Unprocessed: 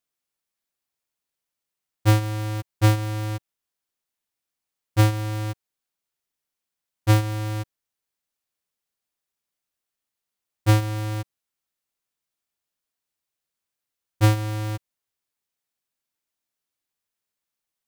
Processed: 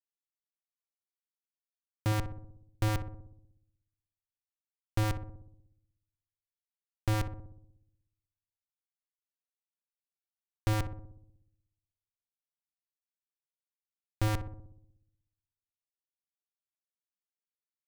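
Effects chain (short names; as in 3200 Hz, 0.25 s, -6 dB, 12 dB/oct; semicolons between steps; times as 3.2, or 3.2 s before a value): LPF 1200 Hz 6 dB/oct; Schmitt trigger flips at -26.5 dBFS; darkening echo 61 ms, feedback 68%, low-pass 950 Hz, level -7 dB; gain +2.5 dB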